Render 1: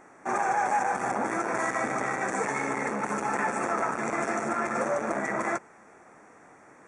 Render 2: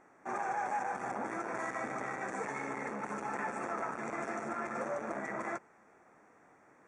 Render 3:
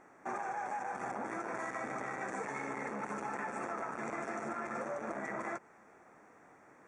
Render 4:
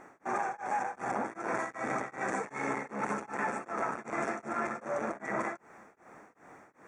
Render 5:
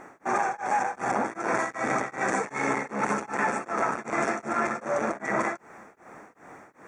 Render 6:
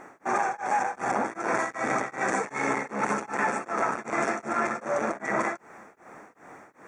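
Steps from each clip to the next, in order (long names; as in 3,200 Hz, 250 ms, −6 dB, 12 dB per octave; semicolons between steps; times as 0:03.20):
high-shelf EQ 8,200 Hz −10.5 dB; level −9 dB
downward compressor, threshold −38 dBFS, peak gain reduction 7.5 dB; level +2.5 dB
tremolo along a rectified sine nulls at 2.6 Hz; level +7.5 dB
dynamic equaliser 4,900 Hz, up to +4 dB, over −52 dBFS, Q 0.77; level +6.5 dB
low-shelf EQ 150 Hz −3.5 dB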